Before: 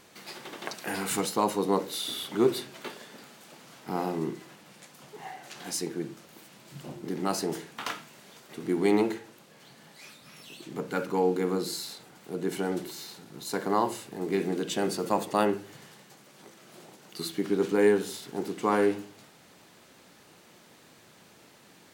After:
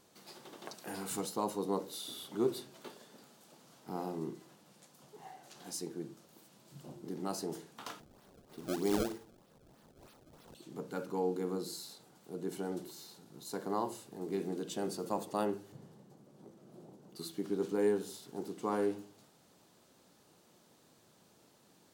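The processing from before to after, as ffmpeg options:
-filter_complex "[0:a]asettb=1/sr,asplit=3[a][b][c];[a]atrim=end=8.004[d];[b]atrim=start=8:end=10.55,asetpts=PTS-STARTPTS,afade=t=in:d=0.004:c=qsin,afade=t=out:st=2.546:d=0.004:c=qsin,acrusher=samples=27:mix=1:aa=0.000001:lfo=1:lforange=43.2:lforate=3.2[e];[c]atrim=start=10.546[f];[d][e]acrossfade=d=0.004:c1=hsin:c2=qsin[g];[g][f]acrossfade=d=0.004:c1=qsin:c2=hsin,asettb=1/sr,asplit=3[h][i][j];[h]atrim=end=15.724[k];[i]atrim=start=15.72:end=17.16,asetpts=PTS-STARTPTS,afade=t=in:d=0.004:c=qsin,afade=t=out:st=1.436:d=0.004:c=qsin,tiltshelf=f=850:g=9.5[l];[j]atrim=start=17.156[m];[k][l]acrossfade=d=0.004:c1=hsin:c2=qsin[n];[n][m]acrossfade=d=0.004:c1=qsin:c2=hsin,equalizer=f=2.1k:t=o:w=1.2:g=-8.5,volume=-8dB"

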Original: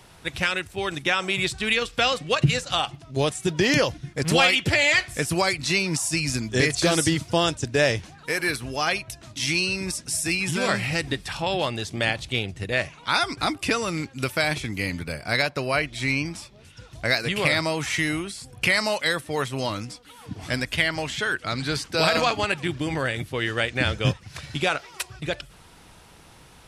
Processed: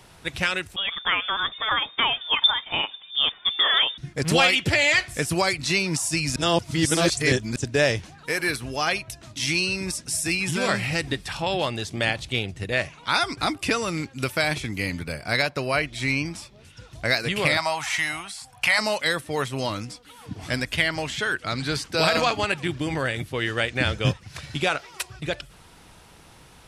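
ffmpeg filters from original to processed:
-filter_complex "[0:a]asettb=1/sr,asplit=3[a][b][c];[a]atrim=end=0.764[d];[b]atrim=start=0.76:end=3.98,asetpts=PTS-STARTPTS,afade=t=in:d=0.004:c=qsin,afade=t=out:st=3.216:d=0.004:c=qsin,lowpass=f=3.1k:t=q:w=0.5098,lowpass=f=3.1k:t=q:w=0.6013,lowpass=f=3.1k:t=q:w=0.9,lowpass=f=3.1k:t=q:w=2.563,afreqshift=-3700[e];[c]atrim=start=3.976[f];[d][e]acrossfade=d=0.004:c1=hsin:c2=qsin[g];[g][f]acrossfade=d=0.004:c1=qsin:c2=hsin,asettb=1/sr,asplit=3[h][i][j];[h]atrim=end=17.574[k];[i]atrim=start=17.57:end=18.79,asetpts=PTS-STARTPTS,afade=t=in:d=0.004:c=qsin,afade=t=out:st=1.216:d=0.004:c=qsin,lowshelf=f=570:t=q:w=3:g=-10.5[l];[j]atrim=start=18.786[m];[k][l]acrossfade=d=0.004:c1=hsin:c2=qsin[n];[n][m]acrossfade=d=0.004:c1=qsin:c2=hsin,asplit=3[o][p][q];[o]atrim=end=6.362[r];[p]atrim=start=6.358:end=7.562,asetpts=PTS-STARTPTS,areverse[s];[q]atrim=start=7.558[t];[r][s]acrossfade=d=0.004:c1=hsin:c2=hsin[u];[u][t]acrossfade=d=0.004:c1=hsin:c2=hsin"

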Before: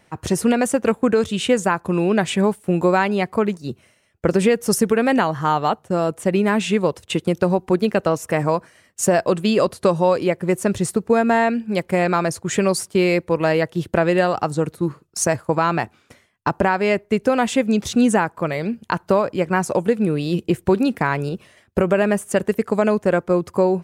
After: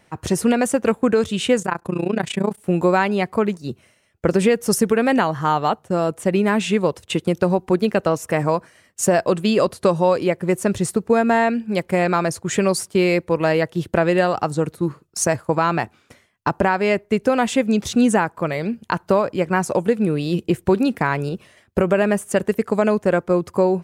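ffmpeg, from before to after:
-filter_complex "[0:a]asplit=3[a][b][c];[a]afade=t=out:st=1.6:d=0.02[d];[b]tremolo=f=29:d=0.919,afade=t=in:st=1.6:d=0.02,afade=t=out:st=2.57:d=0.02[e];[c]afade=t=in:st=2.57:d=0.02[f];[d][e][f]amix=inputs=3:normalize=0"

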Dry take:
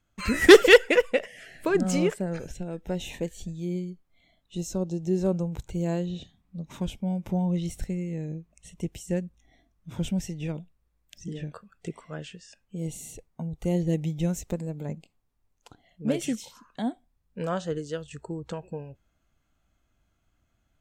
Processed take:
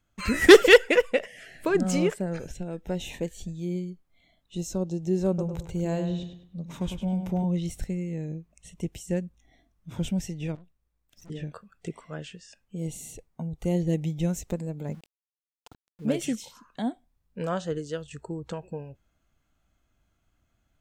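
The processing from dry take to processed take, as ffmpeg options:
-filter_complex "[0:a]asettb=1/sr,asplit=3[a][b][c];[a]atrim=end=5.284[d];[b]atrim=start=5.28:end=7.44,asetpts=PTS-STARTPTS,afade=t=in:d=0.004:c=qsin,afade=t=out:st=2.156:d=0.004:c=qsin,asplit=2[e][f];[f]adelay=102,lowpass=f=3.9k:p=1,volume=-7dB,asplit=2[g][h];[h]adelay=102,lowpass=f=3.9k:p=1,volume=0.36,asplit=2[i][j];[j]adelay=102,lowpass=f=3.9k:p=1,volume=0.36,asplit=2[k][l];[l]adelay=102,lowpass=f=3.9k:p=1,volume=0.36[m];[e][g][i][k][m]amix=inputs=5:normalize=0,atrim=end_sample=95256[n];[c]atrim=start=7.436[o];[d][n]acrossfade=d=0.004:c1=hsin:c2=qsin[p];[p][o]acrossfade=d=0.004:c1=qsin:c2=hsin,asettb=1/sr,asplit=3[q][r][s];[q]atrim=end=10.554[t];[r]atrim=start=10.55:end=11.3,asetpts=PTS-STARTPTS,afade=t=in:d=0.004:c=qsin,afade=t=out:st=0.746:d=0.004:c=qsin,aeval=exprs='(tanh(282*val(0)+0.8)-tanh(0.8))/282':c=same[u];[s]atrim=start=11.296[v];[t][u]acrossfade=d=0.004:c1=hsin:c2=qsin[w];[w][v]acrossfade=d=0.004:c1=qsin:c2=hsin,asettb=1/sr,asplit=3[x][y][z];[x]atrim=end=14.864[aa];[y]atrim=start=14.86:end=16.27,asetpts=PTS-STARTPTS,afade=t=in:d=0.004:c=qsin,afade=t=out:st=1.406:d=0.004:c=qsin,aeval=exprs='val(0)*gte(abs(val(0)),0.00251)':c=same[ab];[z]atrim=start=16.266[ac];[aa][ab]acrossfade=d=0.004:c1=hsin:c2=qsin[ad];[ad][ac]acrossfade=d=0.004:c1=qsin:c2=hsin"

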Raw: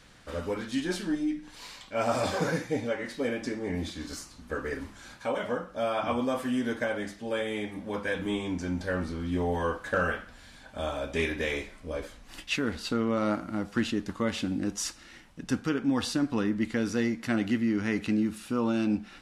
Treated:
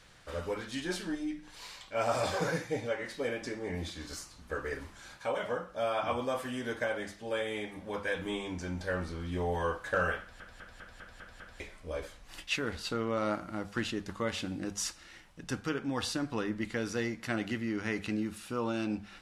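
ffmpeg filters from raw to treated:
-filter_complex "[0:a]asplit=8[a][b][c][d][e][f][g][h];[a]atrim=end=10.402[i];[b]atrim=start=10.198:end=10.402[j];[c]atrim=start=10.198:end=10.402[k];[d]atrim=start=10.198:end=10.402[l];[e]atrim=start=10.198:end=10.402[m];[f]atrim=start=10.198:end=10.402[n];[g]atrim=start=10.198:end=10.402[o];[h]atrim=start=11.598[p];[i][j]acrossfade=d=0.004:c1=hsin:c2=hsin[q];[q][k]acrossfade=d=0.004:c1=hsin:c2=hsin[r];[r][l]acrossfade=d=0.004:c1=hsin:c2=hsin[s];[s][m]acrossfade=d=0.004:c1=hsin:c2=hsin[t];[t][n]acrossfade=d=0.004:c1=hsin:c2=hsin[u];[u][o]acrossfade=d=0.004:c1=hsin:c2=hsin[v];[v][p]acrossfade=d=0.004:c1=hsin:c2=hsin,equalizer=f=250:t=o:w=0.62:g=-8.5,bandreject=f=50:t=h:w=6,bandreject=f=100:t=h:w=6,bandreject=f=150:t=h:w=6,bandreject=f=200:t=h:w=6,volume=-2dB"

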